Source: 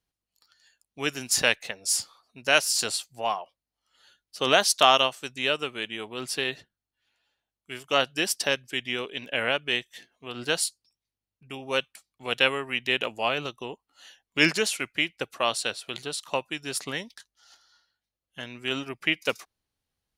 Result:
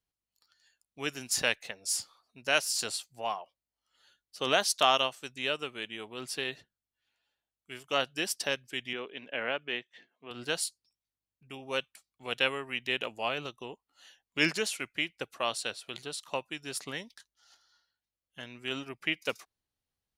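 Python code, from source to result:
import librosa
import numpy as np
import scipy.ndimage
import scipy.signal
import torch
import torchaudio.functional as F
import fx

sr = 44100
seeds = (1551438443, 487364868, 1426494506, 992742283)

y = fx.bandpass_edges(x, sr, low_hz=170.0, high_hz=2800.0, at=(8.93, 10.31))
y = y * 10.0 ** (-6.0 / 20.0)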